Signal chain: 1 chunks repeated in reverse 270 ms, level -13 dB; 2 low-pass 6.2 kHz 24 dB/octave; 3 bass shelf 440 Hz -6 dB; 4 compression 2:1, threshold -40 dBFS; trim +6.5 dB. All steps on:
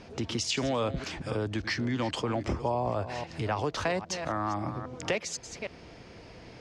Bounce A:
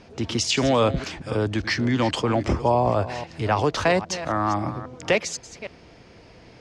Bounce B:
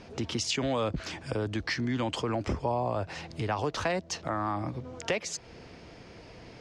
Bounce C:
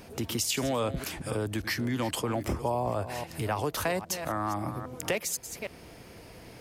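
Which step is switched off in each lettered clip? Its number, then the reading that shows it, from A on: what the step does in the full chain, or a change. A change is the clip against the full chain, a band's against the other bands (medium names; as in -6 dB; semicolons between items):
4, mean gain reduction 5.5 dB; 1, momentary loudness spread change +8 LU; 2, 8 kHz band +5.0 dB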